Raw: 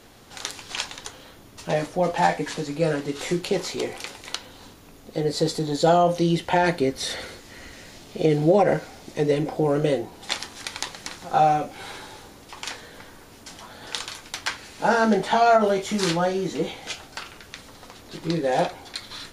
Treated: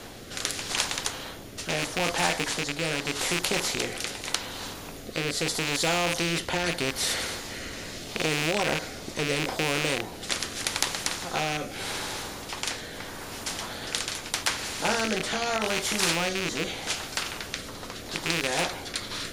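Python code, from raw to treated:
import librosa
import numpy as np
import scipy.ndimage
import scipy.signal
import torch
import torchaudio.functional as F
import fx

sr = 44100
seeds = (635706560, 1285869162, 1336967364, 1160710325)

y = fx.rattle_buzz(x, sr, strikes_db=-32.0, level_db=-17.0)
y = fx.rotary(y, sr, hz=0.8)
y = fx.spectral_comp(y, sr, ratio=2.0)
y = y * librosa.db_to_amplitude(4.0)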